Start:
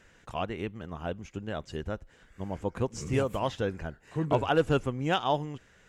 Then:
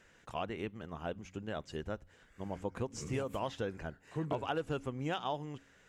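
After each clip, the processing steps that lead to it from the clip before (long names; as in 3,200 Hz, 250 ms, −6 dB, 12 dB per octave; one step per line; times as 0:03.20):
low-shelf EQ 98 Hz −6 dB
hum removal 91.91 Hz, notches 3
downward compressor 6 to 1, threshold −28 dBFS, peak gain reduction 9.5 dB
level −3.5 dB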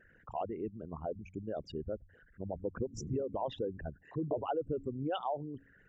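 spectral envelope exaggerated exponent 3
level +1 dB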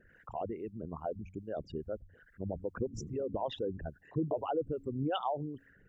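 two-band tremolo in antiphase 2.4 Hz, depth 70%, crossover 560 Hz
level +4.5 dB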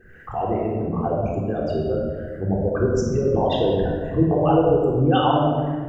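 rectangular room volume 1,800 cubic metres, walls mixed, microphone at 3.7 metres
level +9 dB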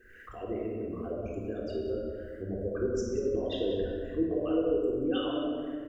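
phaser with its sweep stopped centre 350 Hz, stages 4
single-tap delay 185 ms −11 dB
one half of a high-frequency compander encoder only
level −8.5 dB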